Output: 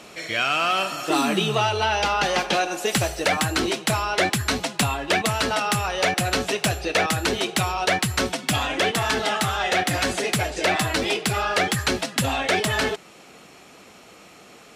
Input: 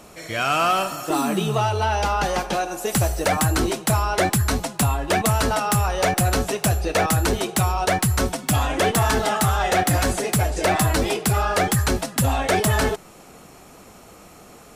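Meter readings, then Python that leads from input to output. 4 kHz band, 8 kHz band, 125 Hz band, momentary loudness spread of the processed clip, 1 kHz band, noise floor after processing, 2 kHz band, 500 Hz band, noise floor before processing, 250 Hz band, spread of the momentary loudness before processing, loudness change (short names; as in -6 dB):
+4.0 dB, -3.0 dB, -7.0 dB, 3 LU, -2.0 dB, -48 dBFS, +2.5 dB, -1.5 dB, -46 dBFS, -2.5 dB, 4 LU, -1.5 dB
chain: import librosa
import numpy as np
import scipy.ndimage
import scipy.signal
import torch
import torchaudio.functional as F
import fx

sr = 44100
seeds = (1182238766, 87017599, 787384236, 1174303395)

y = fx.weighting(x, sr, curve='D')
y = fx.rider(y, sr, range_db=10, speed_s=0.5)
y = fx.high_shelf(y, sr, hz=2400.0, db=-8.5)
y = y * librosa.db_to_amplitude(-1.0)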